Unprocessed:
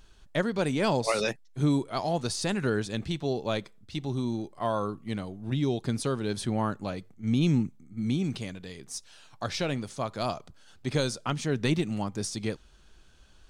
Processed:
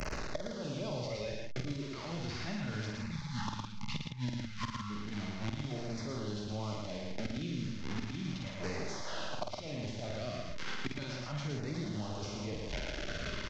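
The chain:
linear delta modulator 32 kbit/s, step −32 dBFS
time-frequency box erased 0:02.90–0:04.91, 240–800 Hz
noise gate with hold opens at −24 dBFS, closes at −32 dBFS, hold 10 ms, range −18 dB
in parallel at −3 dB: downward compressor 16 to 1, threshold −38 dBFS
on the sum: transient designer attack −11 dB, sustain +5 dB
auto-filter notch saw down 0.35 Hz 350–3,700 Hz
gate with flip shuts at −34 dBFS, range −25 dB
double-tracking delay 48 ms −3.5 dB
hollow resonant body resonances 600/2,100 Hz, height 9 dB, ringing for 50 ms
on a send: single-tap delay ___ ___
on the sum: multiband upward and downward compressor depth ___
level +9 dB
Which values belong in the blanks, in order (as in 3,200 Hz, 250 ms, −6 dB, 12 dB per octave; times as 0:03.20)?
111 ms, −3.5 dB, 100%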